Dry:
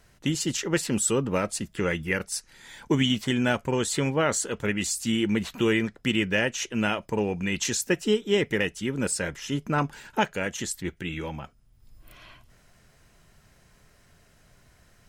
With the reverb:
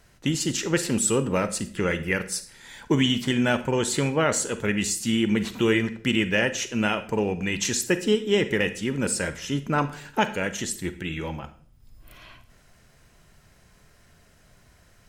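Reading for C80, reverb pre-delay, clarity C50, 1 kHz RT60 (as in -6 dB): 17.5 dB, 34 ms, 13.5 dB, 0.45 s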